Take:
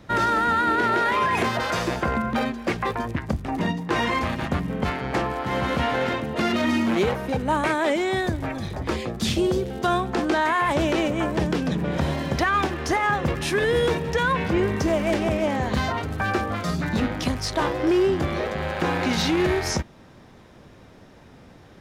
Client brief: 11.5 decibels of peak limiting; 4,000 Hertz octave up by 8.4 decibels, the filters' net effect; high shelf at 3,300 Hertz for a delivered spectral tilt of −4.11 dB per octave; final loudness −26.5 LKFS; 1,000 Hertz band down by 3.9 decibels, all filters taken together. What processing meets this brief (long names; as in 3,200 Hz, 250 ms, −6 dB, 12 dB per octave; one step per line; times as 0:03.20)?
parametric band 1,000 Hz −6.5 dB
high-shelf EQ 3,300 Hz +8.5 dB
parametric band 4,000 Hz +5 dB
level −0.5 dB
brickwall limiter −17.5 dBFS